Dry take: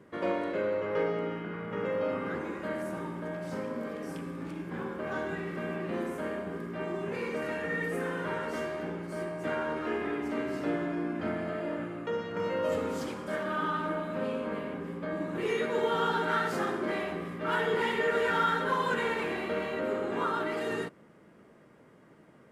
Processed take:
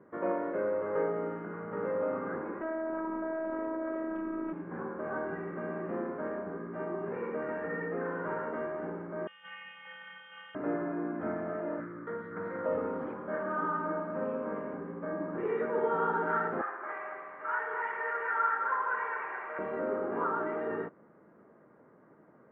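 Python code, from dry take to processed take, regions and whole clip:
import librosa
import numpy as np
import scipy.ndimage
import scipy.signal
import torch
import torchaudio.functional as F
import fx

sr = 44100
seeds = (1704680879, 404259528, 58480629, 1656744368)

y = fx.chain(x, sr, fx.robotise(hz=321.0),
    fx.air_absorb(metres=78.0),
    fx.env_flatten(amount_pct=100), at=(2.61, 4.53))
y = fx.chain(y, sr, fx.robotise(hz=332.0),
    fx.freq_invert(carrier_hz=3500), at=(9.27, 10.55))
y = fx.chain(y, sr, fx.high_shelf(hz=3800.0, db=11.5),
    fx.fixed_phaser(hz=2700.0, stages=6),
    fx.doppler_dist(depth_ms=0.18), at=(11.8, 12.66))
y = fx.chain(y, sr, fx.highpass(hz=970.0, slope=12),
    fx.high_shelf_res(hz=3100.0, db=-8.5, q=1.5),
    fx.echo_crushed(ms=219, feedback_pct=55, bits=8, wet_db=-6.5), at=(16.61, 19.59))
y = scipy.signal.sosfilt(scipy.signal.cheby2(4, 80, 8400.0, 'lowpass', fs=sr, output='sos'), y)
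y = fx.low_shelf(y, sr, hz=130.0, db=-12.0)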